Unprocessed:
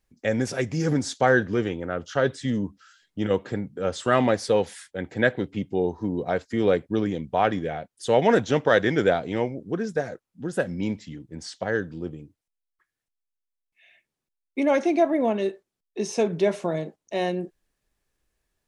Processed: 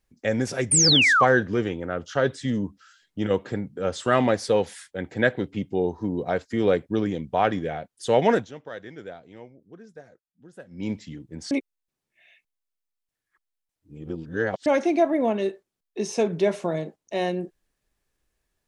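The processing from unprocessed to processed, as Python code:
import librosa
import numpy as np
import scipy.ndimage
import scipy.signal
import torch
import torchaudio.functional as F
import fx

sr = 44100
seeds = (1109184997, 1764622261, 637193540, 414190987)

y = fx.spec_paint(x, sr, seeds[0], shape='fall', start_s=0.71, length_s=0.54, low_hz=980.0, high_hz=9500.0, level_db=-18.0)
y = fx.edit(y, sr, fx.fade_down_up(start_s=8.29, length_s=2.63, db=-18.5, fade_s=0.22),
    fx.reverse_span(start_s=11.51, length_s=3.15), tone=tone)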